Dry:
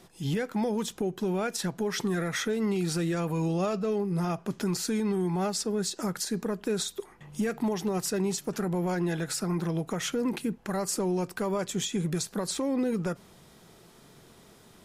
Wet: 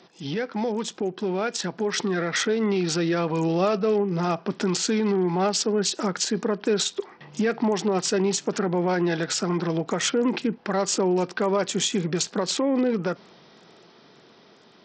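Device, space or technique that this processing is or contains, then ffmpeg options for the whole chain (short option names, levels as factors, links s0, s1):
Bluetooth headset: -af "highpass=220,dynaudnorm=f=390:g=11:m=1.58,aresample=16000,aresample=44100,volume=1.5" -ar 44100 -c:a sbc -b:a 64k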